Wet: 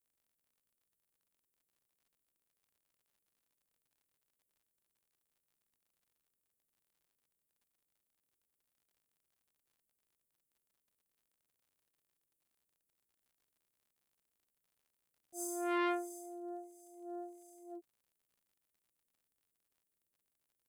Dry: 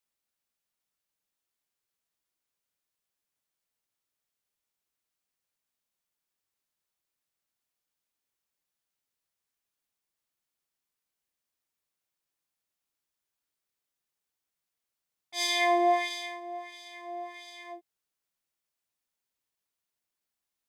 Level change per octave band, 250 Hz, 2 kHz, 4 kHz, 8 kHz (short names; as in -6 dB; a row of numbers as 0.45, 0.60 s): -3.0, -13.5, -22.0, -6.0 dB